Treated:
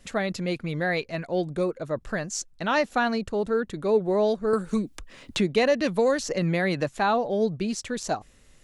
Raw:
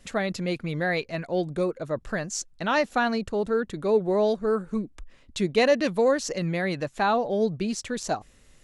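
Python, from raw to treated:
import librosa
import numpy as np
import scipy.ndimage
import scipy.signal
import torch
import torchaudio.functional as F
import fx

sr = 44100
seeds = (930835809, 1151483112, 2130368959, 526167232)

y = fx.band_squash(x, sr, depth_pct=70, at=(4.53, 6.97))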